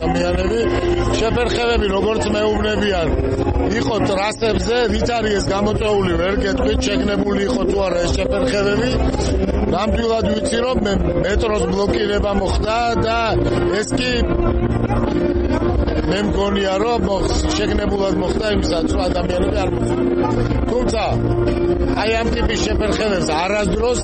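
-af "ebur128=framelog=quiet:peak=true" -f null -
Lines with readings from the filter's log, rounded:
Integrated loudness:
  I:         -18.0 LUFS
  Threshold: -28.0 LUFS
Loudness range:
  LRA:         0.6 LU
  Threshold: -38.0 LUFS
  LRA low:   -18.3 LUFS
  LRA high:  -17.7 LUFS
True peak:
  Peak:       -7.3 dBFS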